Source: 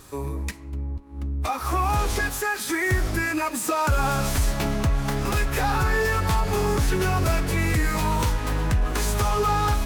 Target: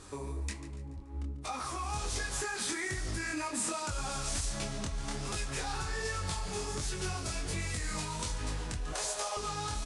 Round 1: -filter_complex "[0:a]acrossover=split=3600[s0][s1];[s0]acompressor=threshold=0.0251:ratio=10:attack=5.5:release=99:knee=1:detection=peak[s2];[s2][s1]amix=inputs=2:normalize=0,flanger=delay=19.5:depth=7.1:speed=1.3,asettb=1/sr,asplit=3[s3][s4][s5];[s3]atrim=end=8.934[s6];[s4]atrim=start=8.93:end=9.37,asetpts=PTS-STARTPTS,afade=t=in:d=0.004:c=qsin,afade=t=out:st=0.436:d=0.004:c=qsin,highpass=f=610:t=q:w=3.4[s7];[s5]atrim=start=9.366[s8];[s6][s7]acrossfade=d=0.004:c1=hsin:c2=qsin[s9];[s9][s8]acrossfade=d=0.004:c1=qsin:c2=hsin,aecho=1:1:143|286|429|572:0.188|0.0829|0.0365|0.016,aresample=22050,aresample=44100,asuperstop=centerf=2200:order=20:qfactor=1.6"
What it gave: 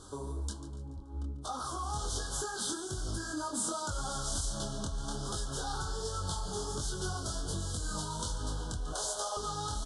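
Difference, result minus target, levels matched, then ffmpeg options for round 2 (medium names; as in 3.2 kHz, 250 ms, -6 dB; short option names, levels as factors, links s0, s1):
2 kHz band -7.0 dB
-filter_complex "[0:a]acrossover=split=3600[s0][s1];[s0]acompressor=threshold=0.0251:ratio=10:attack=5.5:release=99:knee=1:detection=peak[s2];[s2][s1]amix=inputs=2:normalize=0,flanger=delay=19.5:depth=7.1:speed=1.3,asettb=1/sr,asplit=3[s3][s4][s5];[s3]atrim=end=8.934[s6];[s4]atrim=start=8.93:end=9.37,asetpts=PTS-STARTPTS,afade=t=in:d=0.004:c=qsin,afade=t=out:st=0.436:d=0.004:c=qsin,highpass=f=610:t=q:w=3.4[s7];[s5]atrim=start=9.366[s8];[s6][s7]acrossfade=d=0.004:c1=hsin:c2=qsin[s9];[s9][s8]acrossfade=d=0.004:c1=qsin:c2=hsin,aecho=1:1:143|286|429|572:0.188|0.0829|0.0365|0.016,aresample=22050,aresample=44100"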